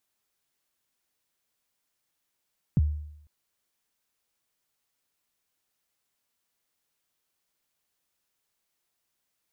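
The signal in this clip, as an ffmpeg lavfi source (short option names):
-f lavfi -i "aevalsrc='0.158*pow(10,-3*t/0.76)*sin(2*PI*(200*0.03/log(75/200)*(exp(log(75/200)*min(t,0.03)/0.03)-1)+75*max(t-0.03,0)))':d=0.5:s=44100"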